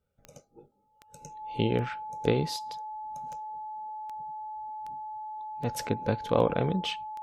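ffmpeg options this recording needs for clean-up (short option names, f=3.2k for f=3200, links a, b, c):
-af "adeclick=t=4,bandreject=f=860:w=30"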